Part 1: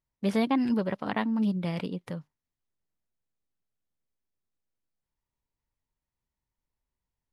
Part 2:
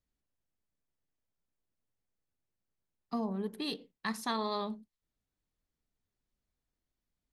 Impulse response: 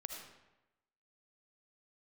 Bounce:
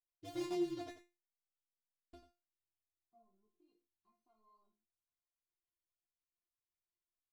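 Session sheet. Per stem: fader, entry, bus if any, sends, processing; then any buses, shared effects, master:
+0.5 dB, 0.00 s, muted 0.92–2.13, no send, echo send -11 dB, ring modulator 93 Hz; noise-modulated delay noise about 3400 Hz, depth 0.064 ms
-14.0 dB, 0.00 s, no send, no echo send, soft clip -28.5 dBFS, distortion -17 dB; chorus 2.6 Hz, delay 18 ms, depth 4.7 ms; running mean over 25 samples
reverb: off
echo: echo 90 ms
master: resonator 350 Hz, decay 0.26 s, harmonics all, mix 100%

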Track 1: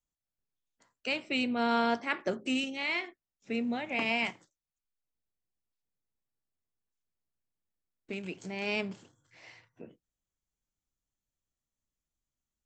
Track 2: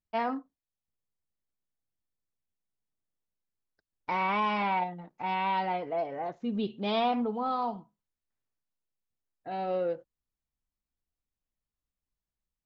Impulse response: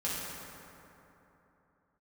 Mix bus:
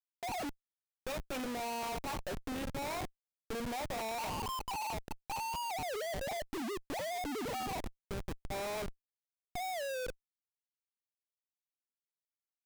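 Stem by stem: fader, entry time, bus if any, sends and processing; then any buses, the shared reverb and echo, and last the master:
-7.0 dB, 0.00 s, no send, rippled Chebyshev low-pass 3400 Hz, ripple 9 dB
-5.0 dB, 0.10 s, no send, sine-wave speech; treble ducked by the level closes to 350 Hz, closed at -29 dBFS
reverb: off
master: band shelf 700 Hz +9.5 dB; Schmitt trigger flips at -44.5 dBFS

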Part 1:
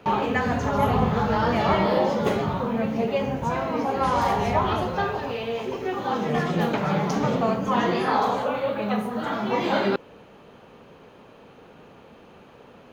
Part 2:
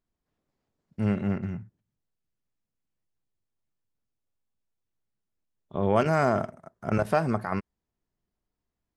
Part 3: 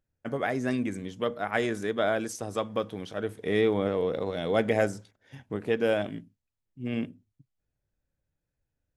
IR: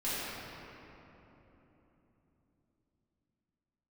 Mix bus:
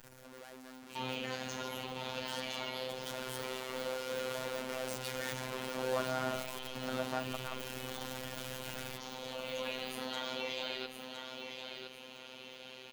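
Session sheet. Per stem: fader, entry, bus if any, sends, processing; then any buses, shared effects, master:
-5.0 dB, 0.90 s, no send, echo send -6.5 dB, compressor, threshold -26 dBFS, peak gain reduction 10 dB; resonant high shelf 2000 Hz +13.5 dB, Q 1.5; limiter -24.5 dBFS, peak gain reduction 15 dB; auto duck -12 dB, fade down 0.45 s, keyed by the third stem
-11.0 dB, 0.00 s, no send, no echo send, dry
2.67 s -18.5 dB -> 3.27 s -7.5 dB, 0.00 s, no send, echo send -10 dB, infinite clipping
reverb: off
echo: feedback echo 1.011 s, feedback 33%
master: low shelf 300 Hz -10.5 dB; robotiser 129 Hz; small resonant body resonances 220/510/960/1400 Hz, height 6 dB, ringing for 40 ms

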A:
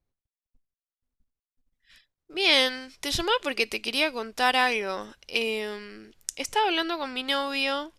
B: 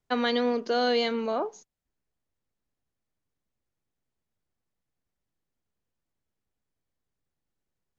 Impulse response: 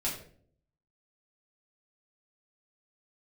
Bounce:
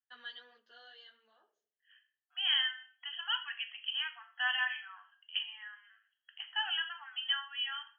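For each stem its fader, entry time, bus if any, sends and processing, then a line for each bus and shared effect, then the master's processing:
-4.5 dB, 0.00 s, send -5 dB, reverb removal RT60 1.2 s; FFT band-pass 690–3300 Hz
-10.0 dB, 0.00 s, send -20 dB, ensemble effect; auto duck -16 dB, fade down 1.55 s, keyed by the first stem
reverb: on, RT60 0.55 s, pre-delay 3 ms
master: double band-pass 2300 Hz, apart 0.83 oct

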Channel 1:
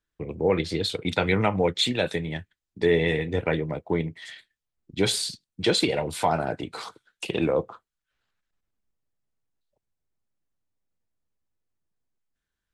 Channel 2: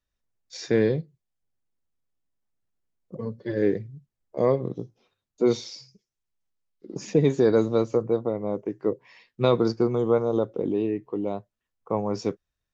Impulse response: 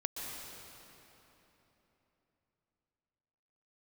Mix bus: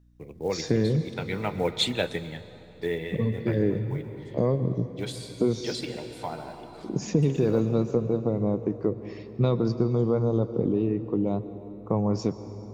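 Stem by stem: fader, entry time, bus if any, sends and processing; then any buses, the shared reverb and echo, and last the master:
-0.5 dB, 0.00 s, send -16 dB, short-mantissa float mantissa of 4-bit; upward expander 1.5:1, over -31 dBFS; auto duck -14 dB, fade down 0.90 s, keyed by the second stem
+0.5 dB, 0.00 s, send -10 dB, tone controls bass +11 dB, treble +10 dB; compressor 3:1, threshold -25 dBFS, peak gain reduction 11 dB; high shelf 2900 Hz -9.5 dB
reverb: on, RT60 3.6 s, pre-delay 0.114 s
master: hum 60 Hz, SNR 32 dB

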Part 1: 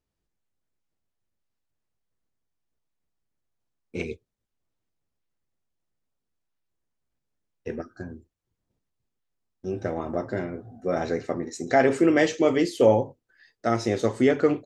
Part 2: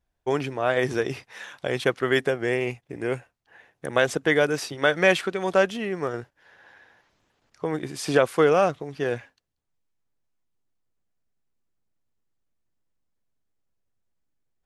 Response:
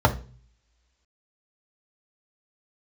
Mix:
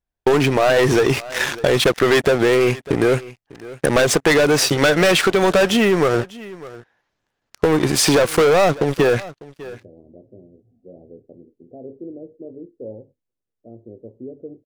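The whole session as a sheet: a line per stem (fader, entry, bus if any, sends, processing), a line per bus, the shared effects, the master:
-14.5 dB, 0.00 s, no send, no echo send, steep low-pass 570 Hz 36 dB/oct
+2.0 dB, 0.00 s, no send, echo send -24 dB, sample leveller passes 5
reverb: off
echo: echo 0.599 s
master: compressor, threshold -13 dBFS, peak gain reduction 7.5 dB

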